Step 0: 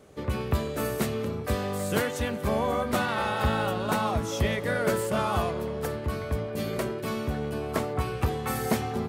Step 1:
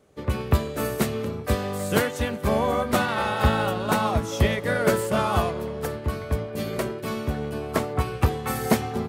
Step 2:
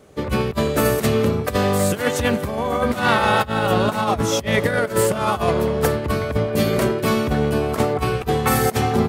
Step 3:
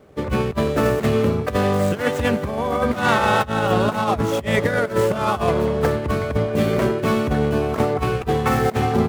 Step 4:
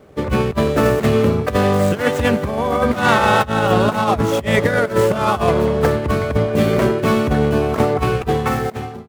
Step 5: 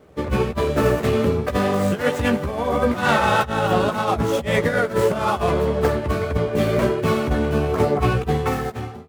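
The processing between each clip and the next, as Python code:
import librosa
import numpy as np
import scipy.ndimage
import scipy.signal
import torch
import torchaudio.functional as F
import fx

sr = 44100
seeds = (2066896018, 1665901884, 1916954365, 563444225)

y1 = fx.upward_expand(x, sr, threshold_db=-46.0, expansion=1.5)
y1 = F.gain(torch.from_numpy(y1), 6.5).numpy()
y2 = fx.over_compress(y1, sr, threshold_db=-26.0, ratio=-0.5)
y2 = F.gain(torch.from_numpy(y2), 8.0).numpy()
y3 = scipy.ndimage.median_filter(y2, 9, mode='constant')
y4 = fx.fade_out_tail(y3, sr, length_s=0.88)
y4 = F.gain(torch.from_numpy(y4), 3.5).numpy()
y5 = fx.chorus_voices(y4, sr, voices=4, hz=1.4, base_ms=14, depth_ms=3.0, mix_pct=35)
y5 = F.gain(torch.from_numpy(y5), -1.0).numpy()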